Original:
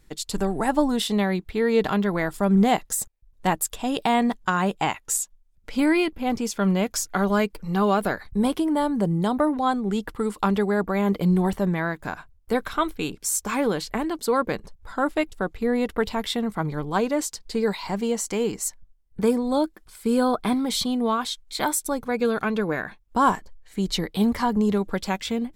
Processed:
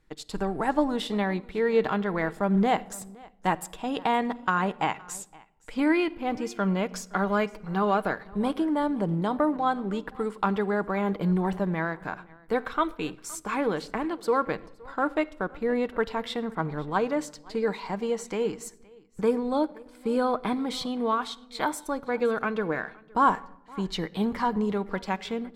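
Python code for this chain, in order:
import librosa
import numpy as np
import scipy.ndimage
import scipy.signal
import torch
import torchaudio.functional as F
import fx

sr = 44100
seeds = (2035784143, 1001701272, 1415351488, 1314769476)

p1 = fx.peak_eq(x, sr, hz=690.0, db=-2.5, octaves=0.77)
p2 = p1 + fx.echo_single(p1, sr, ms=517, db=-22.0, dry=0)
p3 = fx.room_shoebox(p2, sr, seeds[0], volume_m3=3600.0, walls='furnished', distance_m=0.57)
p4 = np.sign(p3) * np.maximum(np.abs(p3) - 10.0 ** (-40.5 / 20.0), 0.0)
p5 = p3 + F.gain(torch.from_numpy(p4), -6.0).numpy()
p6 = fx.lowpass(p5, sr, hz=1200.0, slope=6)
y = fx.low_shelf(p6, sr, hz=430.0, db=-10.5)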